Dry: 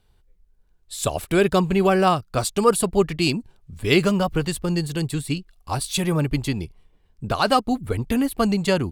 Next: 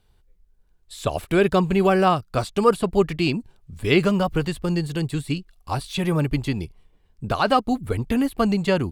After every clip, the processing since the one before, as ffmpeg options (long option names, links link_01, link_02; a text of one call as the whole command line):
ffmpeg -i in.wav -filter_complex "[0:a]acrossover=split=3800[link_01][link_02];[link_02]acompressor=threshold=-40dB:ratio=4:attack=1:release=60[link_03];[link_01][link_03]amix=inputs=2:normalize=0" out.wav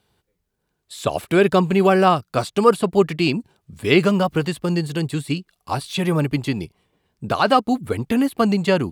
ffmpeg -i in.wav -af "highpass=130,volume=3dB" out.wav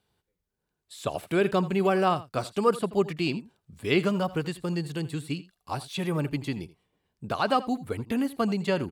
ffmpeg -i in.wav -af "aecho=1:1:82:0.133,volume=-8.5dB" out.wav